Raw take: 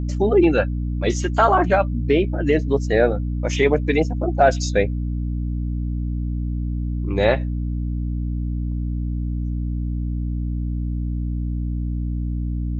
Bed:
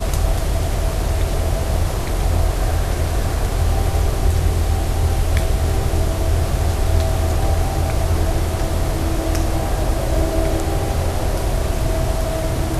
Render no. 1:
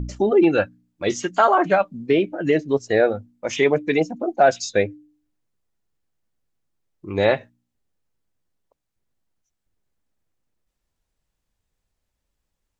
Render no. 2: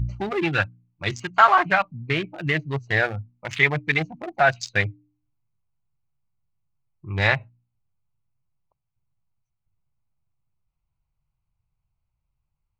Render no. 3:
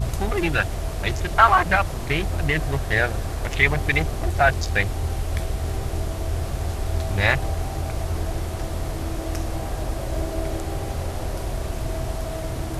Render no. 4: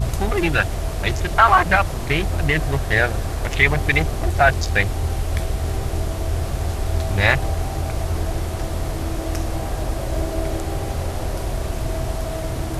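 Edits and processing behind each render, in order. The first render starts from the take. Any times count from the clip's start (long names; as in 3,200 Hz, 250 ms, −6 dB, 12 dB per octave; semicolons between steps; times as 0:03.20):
hum removal 60 Hz, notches 5
adaptive Wiener filter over 25 samples; graphic EQ with 10 bands 125 Hz +11 dB, 250 Hz −11 dB, 500 Hz −12 dB, 1,000 Hz +4 dB, 2,000 Hz +8 dB, 4,000 Hz +4 dB
mix in bed −8 dB
level +3 dB; brickwall limiter −2 dBFS, peak gain reduction 3 dB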